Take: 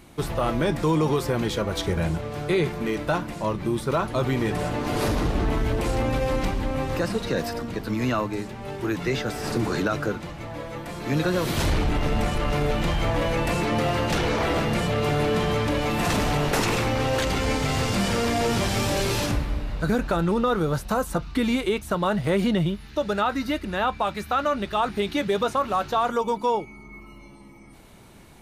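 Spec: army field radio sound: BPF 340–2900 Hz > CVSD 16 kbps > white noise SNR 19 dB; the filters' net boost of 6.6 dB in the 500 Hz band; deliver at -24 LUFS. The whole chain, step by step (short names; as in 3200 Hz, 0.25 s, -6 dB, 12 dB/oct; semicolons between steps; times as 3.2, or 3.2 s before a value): BPF 340–2900 Hz; bell 500 Hz +9 dB; CVSD 16 kbps; white noise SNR 19 dB; gain -0.5 dB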